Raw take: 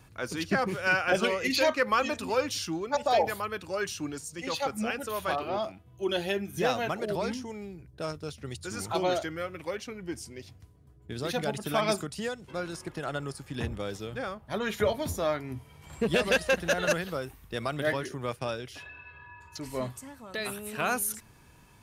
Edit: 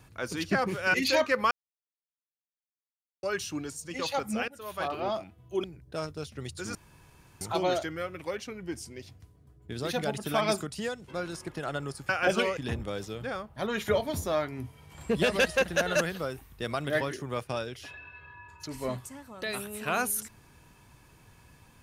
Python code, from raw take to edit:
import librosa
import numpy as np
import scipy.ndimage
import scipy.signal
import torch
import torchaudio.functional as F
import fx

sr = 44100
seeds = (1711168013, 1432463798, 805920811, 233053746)

y = fx.edit(x, sr, fx.move(start_s=0.94, length_s=0.48, to_s=13.49),
    fx.silence(start_s=1.99, length_s=1.72),
    fx.fade_in_from(start_s=4.96, length_s=0.5, floor_db=-18.5),
    fx.cut(start_s=6.12, length_s=1.58),
    fx.insert_room_tone(at_s=8.81, length_s=0.66), tone=tone)